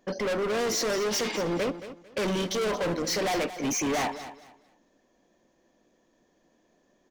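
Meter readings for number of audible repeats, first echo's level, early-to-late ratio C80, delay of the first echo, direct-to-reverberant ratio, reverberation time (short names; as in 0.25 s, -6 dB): 2, -13.0 dB, none, 0.224 s, none, none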